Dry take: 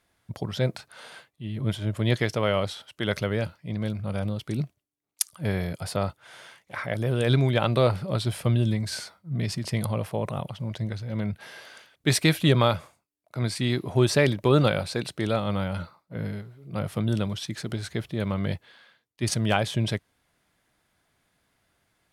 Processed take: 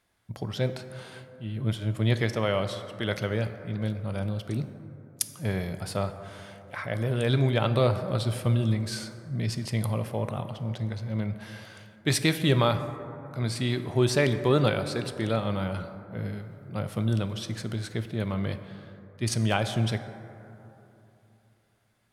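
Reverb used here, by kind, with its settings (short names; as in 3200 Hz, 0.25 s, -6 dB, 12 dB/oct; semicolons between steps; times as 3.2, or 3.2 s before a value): plate-style reverb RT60 3.1 s, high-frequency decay 0.3×, DRR 9 dB; gain -2.5 dB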